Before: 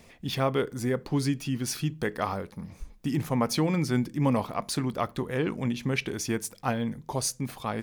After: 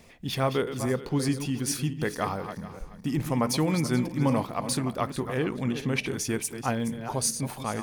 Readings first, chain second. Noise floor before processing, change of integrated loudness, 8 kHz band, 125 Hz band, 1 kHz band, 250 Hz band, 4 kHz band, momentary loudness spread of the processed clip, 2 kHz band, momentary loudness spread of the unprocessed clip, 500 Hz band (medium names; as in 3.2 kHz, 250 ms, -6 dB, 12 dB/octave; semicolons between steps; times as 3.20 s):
-55 dBFS, +1.0 dB, +3.5 dB, +0.5 dB, +0.5 dB, +0.5 dB, +1.0 dB, 6 LU, +0.5 dB, 6 LU, +0.5 dB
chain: backward echo that repeats 215 ms, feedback 43%, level -9.5 dB; dynamic bell 9.3 kHz, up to +5 dB, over -51 dBFS, Q 1.6